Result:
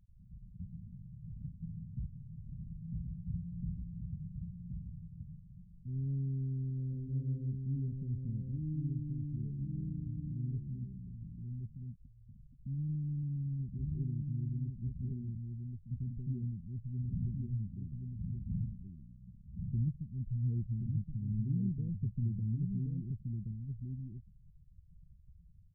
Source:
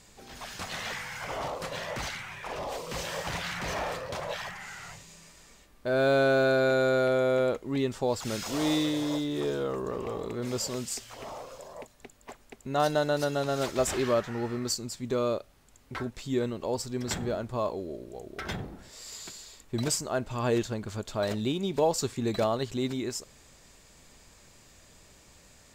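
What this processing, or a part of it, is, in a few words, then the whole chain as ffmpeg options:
the neighbour's flat through the wall: -af "lowpass=f=160:w=0.5412,lowpass=f=160:w=1.3066,equalizer=f=180:t=o:w=0.43:g=5,afftfilt=real='re*gte(hypot(re,im),0.00562)':imag='im*gte(hypot(re,im),0.00562)':win_size=1024:overlap=0.75,aecho=1:1:1075:0.631,volume=1.26"

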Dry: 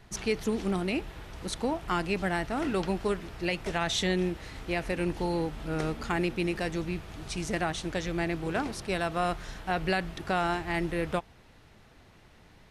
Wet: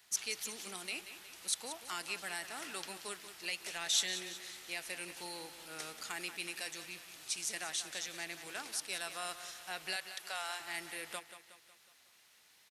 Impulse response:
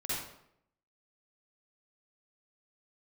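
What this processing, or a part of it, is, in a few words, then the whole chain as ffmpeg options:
one-band saturation: -filter_complex "[0:a]asettb=1/sr,asplit=3[s0][s1][s2];[s0]atrim=end=9.964[s3];[s1]atrim=start=9.96:end=10.6,asetpts=PTS-STARTPTS,afade=t=in:d=0.004:c=qsin,afade=t=out:st=0.636:d=0.004:c=qsin,highpass=f=450:w=0.5412,highpass=f=450:w=1.3066[s4];[s2]atrim=start=10.596[s5];[s3][s4]acrossfade=d=0.004:c1=hsin:c2=qsin[s6];[s6][s5]acrossfade=d=0.004:c1=qsin:c2=hsin,aderivative,aecho=1:1:183|366|549|732|915:0.251|0.128|0.0653|0.0333|0.017,acrossover=split=560|3300[s7][s8][s9];[s8]asoftclip=type=tanh:threshold=0.0141[s10];[s7][s10][s9]amix=inputs=3:normalize=0,volume=1.68"

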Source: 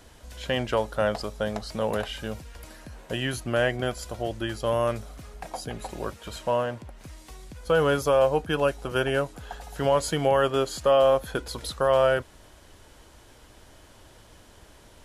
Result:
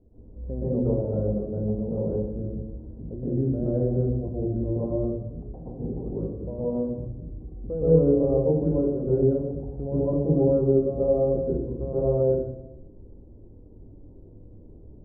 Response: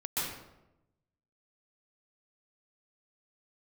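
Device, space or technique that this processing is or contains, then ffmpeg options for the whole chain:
next room: -filter_complex "[0:a]lowpass=f=440:w=0.5412,lowpass=f=440:w=1.3066[s0];[1:a]atrim=start_sample=2205[s1];[s0][s1]afir=irnorm=-1:irlink=0"

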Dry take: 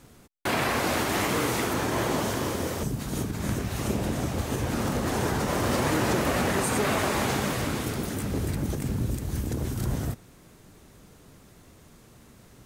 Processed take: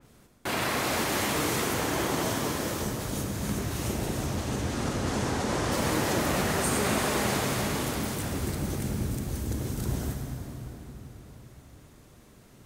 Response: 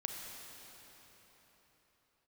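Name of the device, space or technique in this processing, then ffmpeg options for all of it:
cathedral: -filter_complex "[0:a]asettb=1/sr,asplit=3[s0][s1][s2];[s0]atrim=end=4.264[s3];[s1]atrim=start=4.26:end=5.72,asetpts=PTS-STARTPTS,afade=t=in:d=0.004:c=qsin,afade=t=out:st=1.456:d=0.004:c=qsin,lowpass=8400[s4];[s2]atrim=start=5.716[s5];[s3][s4]acrossfade=d=0.004:c1=hsin:c2=qsin[s6];[s6][s5]acrossfade=d=0.004:c1=qsin:c2=hsin[s7];[1:a]atrim=start_sample=2205[s8];[s7][s8]afir=irnorm=-1:irlink=0,adynamicequalizer=threshold=0.00562:dfrequency=3200:dqfactor=0.7:tfrequency=3200:tqfactor=0.7:attack=5:release=100:ratio=0.375:range=2:mode=boostabove:tftype=highshelf,volume=0.75"

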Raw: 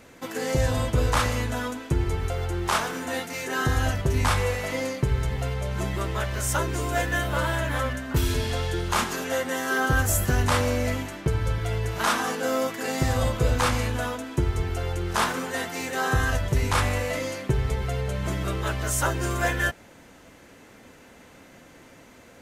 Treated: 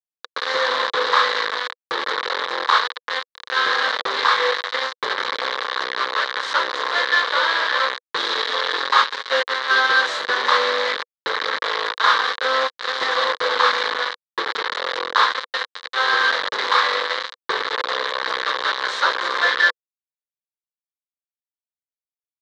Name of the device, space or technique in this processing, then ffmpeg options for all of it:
hand-held game console: -filter_complex "[0:a]acrusher=bits=3:mix=0:aa=0.000001,highpass=f=850:p=1,highpass=480,equalizer=f=490:t=q:w=4:g=9,equalizer=f=690:t=q:w=4:g=-8,equalizer=f=1100:t=q:w=4:g=8,equalizer=f=1700:t=q:w=4:g=6,equalizer=f=2600:t=q:w=4:g=-10,equalizer=f=3900:t=q:w=4:g=9,lowpass=f=4100:w=0.5412,lowpass=f=4100:w=1.3066,asettb=1/sr,asplit=3[s0][s1][s2];[s0]atrim=end=8.784[s3];[s1]atrim=start=8.78:end=9.4,asetpts=PTS-STARTPTS,afade=t=in:d=0.004:c=qsin,afade=t=out:st=0.616:d=0.004:c=qsin,aecho=1:1:7.3:0.63,atrim=end_sample=27342[s4];[s2]atrim=start=9.396[s5];[s3][s4]acrossfade=d=0.004:c1=hsin:c2=qsin[s6];[s6][s5]acrossfade=d=0.004:c1=qsin:c2=hsin,volume=2"

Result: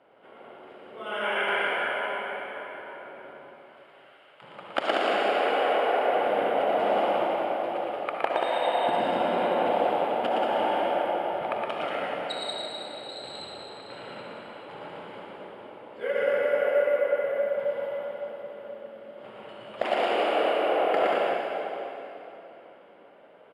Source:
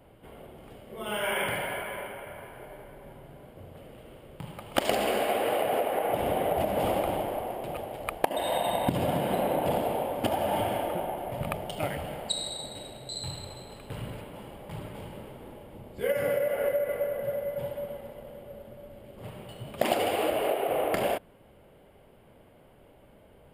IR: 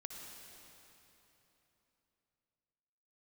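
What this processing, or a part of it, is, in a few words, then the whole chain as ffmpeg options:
station announcement: -filter_complex "[0:a]asettb=1/sr,asplit=3[s0][s1][s2];[s0]atrim=end=3.374[s3];[s1]atrim=start=3.37:end=4.42,asetpts=PTS-STARTPTS,afade=t=in:d=0.004:c=qsin,afade=t=out:st=1.046:d=0.004:c=qsin,highpass=1300[s4];[s2]atrim=start=4.416[s5];[s3][s4]acrossfade=d=0.004:c1=hsin:c2=qsin[s6];[s6][s5]acrossfade=d=0.004:c1=qsin:c2=hsin,highpass=380,lowpass=3500,equalizer=f=1400:t=o:w=0.34:g=6,aecho=1:1:116.6|183.7:0.708|0.631[s7];[1:a]atrim=start_sample=2205[s8];[s7][s8]afir=irnorm=-1:irlink=0,volume=1.68"

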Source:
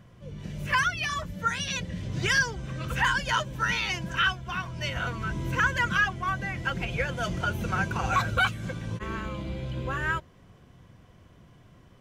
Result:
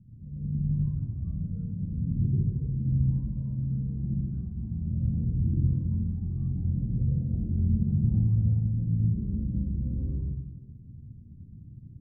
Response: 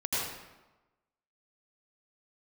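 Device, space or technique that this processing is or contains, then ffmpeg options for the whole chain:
club heard from the street: -filter_complex "[0:a]alimiter=limit=0.119:level=0:latency=1:release=500,lowpass=f=230:w=0.5412,lowpass=f=230:w=1.3066[s0];[1:a]atrim=start_sample=2205[s1];[s0][s1]afir=irnorm=-1:irlink=0"

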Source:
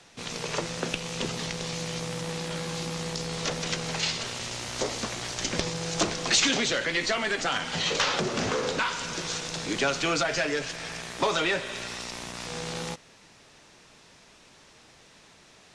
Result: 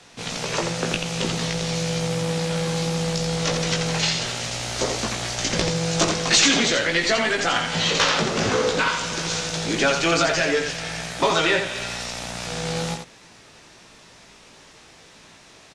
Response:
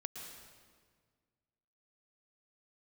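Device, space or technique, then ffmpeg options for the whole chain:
slapback doubling: -filter_complex "[0:a]asplit=3[s0][s1][s2];[s1]adelay=18,volume=0.596[s3];[s2]adelay=85,volume=0.562[s4];[s0][s3][s4]amix=inputs=3:normalize=0,volume=1.58"

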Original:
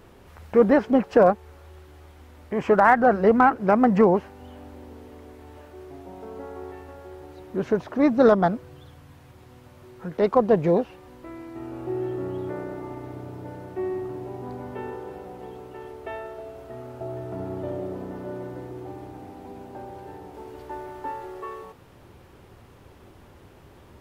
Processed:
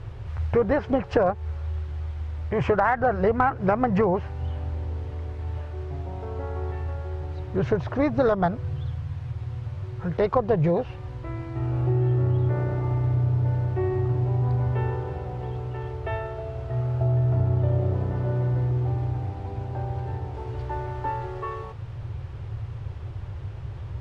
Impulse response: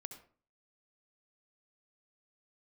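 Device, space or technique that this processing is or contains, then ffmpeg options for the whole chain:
jukebox: -af "lowpass=5000,lowshelf=f=160:t=q:w=3:g=11,acompressor=threshold=0.0794:ratio=5,volume=1.58"

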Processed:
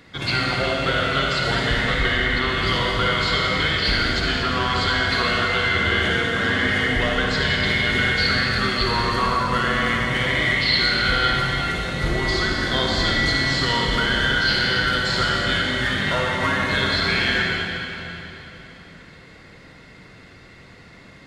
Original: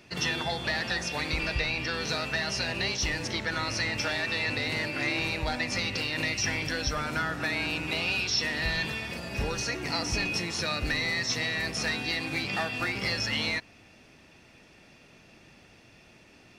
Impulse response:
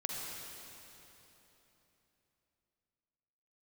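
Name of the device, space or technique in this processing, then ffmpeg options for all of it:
slowed and reverbed: -filter_complex "[0:a]asetrate=34398,aresample=44100[s0];[1:a]atrim=start_sample=2205[s1];[s0][s1]afir=irnorm=-1:irlink=0,volume=2.24"

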